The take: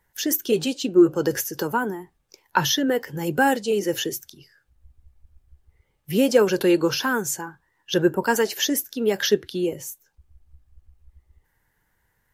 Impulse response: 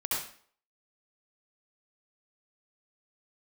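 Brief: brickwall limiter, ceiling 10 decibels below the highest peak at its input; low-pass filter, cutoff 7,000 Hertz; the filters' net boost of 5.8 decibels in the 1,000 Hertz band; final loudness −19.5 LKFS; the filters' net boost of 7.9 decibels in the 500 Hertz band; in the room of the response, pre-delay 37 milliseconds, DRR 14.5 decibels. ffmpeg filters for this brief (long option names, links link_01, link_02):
-filter_complex "[0:a]lowpass=7000,equalizer=frequency=500:width_type=o:gain=9,equalizer=frequency=1000:width_type=o:gain=4,alimiter=limit=-6.5dB:level=0:latency=1,asplit=2[link_01][link_02];[1:a]atrim=start_sample=2205,adelay=37[link_03];[link_02][link_03]afir=irnorm=-1:irlink=0,volume=-21dB[link_04];[link_01][link_04]amix=inputs=2:normalize=0,volume=-0.5dB"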